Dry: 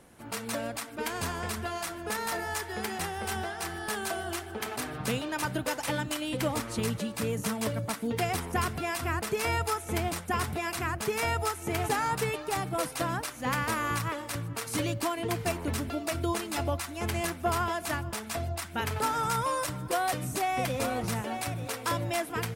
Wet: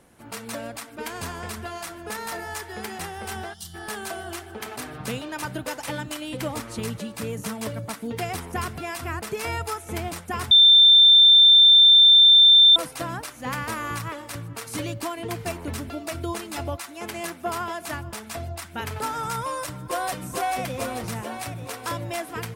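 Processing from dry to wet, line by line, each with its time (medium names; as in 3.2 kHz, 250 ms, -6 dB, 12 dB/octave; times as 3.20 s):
3.54–3.74 s: time-frequency box 220–2800 Hz -21 dB
10.51–12.76 s: bleep 3.57 kHz -9.5 dBFS
16.75–17.90 s: high-pass 280 Hz -> 110 Hz
19.45–20.19 s: echo throw 440 ms, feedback 65%, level -4 dB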